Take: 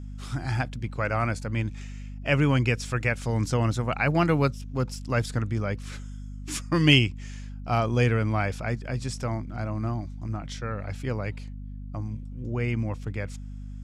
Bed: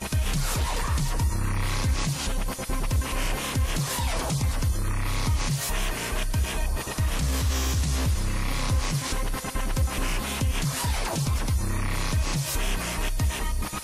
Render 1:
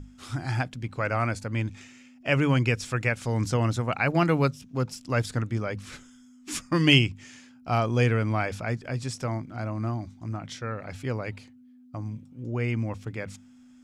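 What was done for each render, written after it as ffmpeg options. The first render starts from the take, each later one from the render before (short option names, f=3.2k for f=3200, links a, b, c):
-af "bandreject=f=50:t=h:w=6,bandreject=f=100:t=h:w=6,bandreject=f=150:t=h:w=6,bandreject=f=200:t=h:w=6"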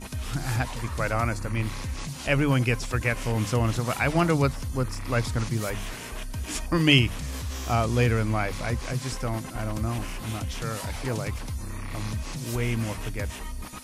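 -filter_complex "[1:a]volume=-8dB[a];[0:a][a]amix=inputs=2:normalize=0"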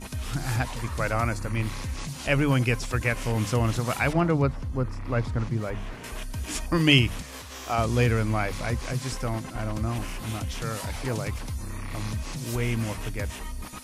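-filter_complex "[0:a]asettb=1/sr,asplit=3[a][b][c];[a]atrim=end=4.134[d];[b]atrim=start=4.13:end=6.04,asetpts=PTS-STARTPTS,afade=t=in:d=0.004:c=qsin,afade=t=out:st=1.906:d=0.004:c=qsin,lowpass=f=1.3k:p=1[e];[c]atrim=start=6.036[f];[d][e]acrossfade=d=0.004:c1=hsin:c2=qsin[g];[g][f]acrossfade=d=0.004:c1=qsin:c2=hsin,asettb=1/sr,asplit=3[h][i][j];[h]atrim=end=7.224[k];[i]atrim=start=7.22:end=7.78,asetpts=PTS-STARTPTS,afade=t=in:d=0.004:c=qsin,afade=t=out:st=0.556:d=0.004:c=qsin,bass=f=250:g=-14,treble=f=4k:g=-3[l];[j]atrim=start=7.776[m];[k][l]acrossfade=d=0.004:c1=hsin:c2=qsin[n];[n][m]acrossfade=d=0.004:c1=qsin:c2=hsin,asettb=1/sr,asplit=3[o][p][q];[o]atrim=end=9.334[r];[p]atrim=start=9.33:end=9.96,asetpts=PTS-STARTPTS,afade=t=in:d=0.004:c=qsin,afade=t=out:st=0.626:d=0.004:c=qsin,highshelf=f=12k:g=-12[s];[q]atrim=start=9.956[t];[r][s]acrossfade=d=0.004:c1=hsin:c2=qsin[u];[u][t]acrossfade=d=0.004:c1=qsin:c2=hsin"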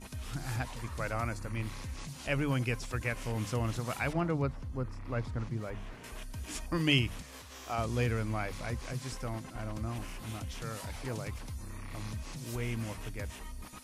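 -af "volume=-8.5dB"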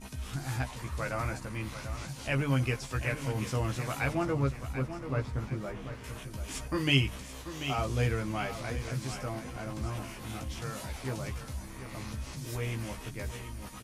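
-filter_complex "[0:a]asplit=2[a][b];[b]adelay=15,volume=-4dB[c];[a][c]amix=inputs=2:normalize=0,aecho=1:1:737|1474|2211|2948:0.299|0.113|0.0431|0.0164"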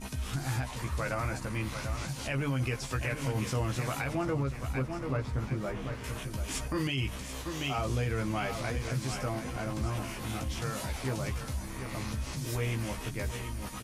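-filter_complex "[0:a]asplit=2[a][b];[b]acompressor=threshold=-38dB:ratio=6,volume=-2.5dB[c];[a][c]amix=inputs=2:normalize=0,alimiter=limit=-22dB:level=0:latency=1:release=63"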